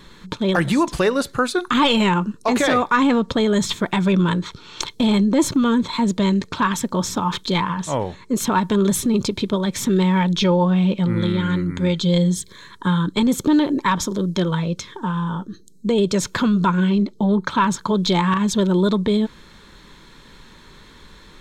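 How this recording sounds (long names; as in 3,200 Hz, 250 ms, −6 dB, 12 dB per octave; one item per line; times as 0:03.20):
background noise floor −47 dBFS
spectral slope −5.5 dB per octave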